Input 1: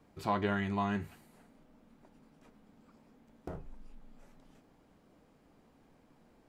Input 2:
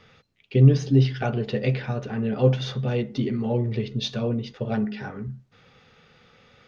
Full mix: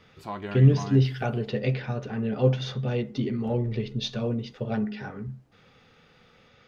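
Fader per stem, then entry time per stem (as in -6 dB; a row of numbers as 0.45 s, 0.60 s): -3.5 dB, -2.5 dB; 0.00 s, 0.00 s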